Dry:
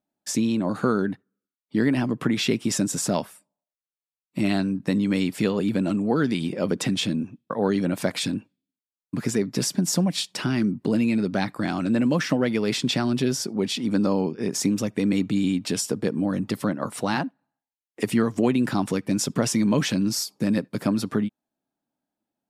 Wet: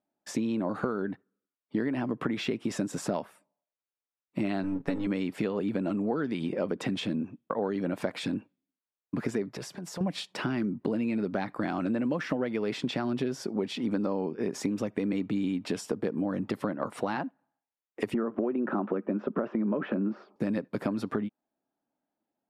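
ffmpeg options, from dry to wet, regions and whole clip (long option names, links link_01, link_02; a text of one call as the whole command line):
ffmpeg -i in.wav -filter_complex "[0:a]asettb=1/sr,asplit=3[link_01][link_02][link_03];[link_01]atrim=end=4.634[link_04];[link_02]atrim=start=4.63:end=5.07,asetpts=PTS-STARTPTS,afade=type=in:duration=0.004:curve=qsin,afade=type=out:start_time=0.436:duration=0.004:curve=qsin,aeval=exprs='if(lt(val(0),0),0.447*val(0),val(0))':channel_layout=same,aecho=1:1:7.2:0.85,atrim=end_sample=19404[link_05];[link_03]atrim=start=5.066[link_06];[link_04][link_05]acrossfade=duration=0.004:curve1=hsin:curve2=qsin[link_07];[link_07][link_06]acrossfade=duration=0.004:curve1=qsin:curve2=hsin,asettb=1/sr,asplit=3[link_08][link_09][link_10];[link_08]atrim=end=9.484[link_11];[link_09]atrim=start=9.48:end=10.01,asetpts=PTS-STARTPTS,afade=type=in:duration=0.004:curve=qsin,afade=type=out:start_time=0.526:duration=0.004:curve=qsin,acompressor=threshold=-27dB:ratio=5:attack=3.2:release=140:knee=1:detection=peak,equalizer=frequency=250:width_type=o:width=0.81:gain=-11[link_12];[link_10]atrim=start=10.006[link_13];[link_11][link_12]acrossfade=duration=0.004:curve1=hsin:curve2=qsin[link_14];[link_14][link_13]acrossfade=duration=0.004:curve1=qsin:curve2=hsin,asettb=1/sr,asplit=3[link_15][link_16][link_17];[link_15]atrim=end=18.144[link_18];[link_16]atrim=start=18.14:end=20.36,asetpts=PTS-STARTPTS,afade=type=in:duration=0.004:curve=qsin,afade=type=out:start_time=2.216:duration=0.004:curve=qsin,highpass=frequency=180:width=0.5412,highpass=frequency=180:width=1.3066,equalizer=frequency=210:width_type=q:width=4:gain=7,equalizer=frequency=370:width_type=q:width=4:gain=8,equalizer=frequency=580:width_type=q:width=4:gain=7,equalizer=frequency=1300:width_type=q:width=4:gain=7,equalizer=frequency=2100:width_type=q:width=4:gain=-7,lowpass=frequency=2300:width=0.5412,lowpass=frequency=2300:width=1.3066,acompressor=threshold=-18dB:ratio=2.5:attack=3.2:release=140:knee=1:detection=peak[link_19];[link_17]atrim=start=20.356[link_20];[link_18][link_19]acrossfade=duration=0.004:curve1=hsin:curve2=qsin[link_21];[link_21][link_20]acrossfade=duration=0.004:curve1=qsin:curve2=hsin,bass=frequency=250:gain=-8,treble=frequency=4000:gain=-8,acompressor=threshold=-28dB:ratio=6,highshelf=frequency=2200:gain=-9,volume=2.5dB" out.wav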